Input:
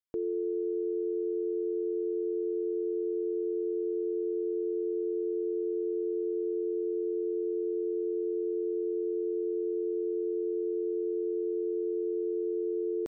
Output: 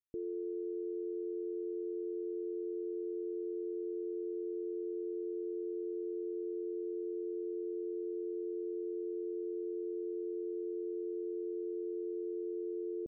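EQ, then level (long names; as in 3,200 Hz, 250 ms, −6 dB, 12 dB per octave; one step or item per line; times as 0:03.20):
Gaussian smoothing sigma 20 samples
−2.0 dB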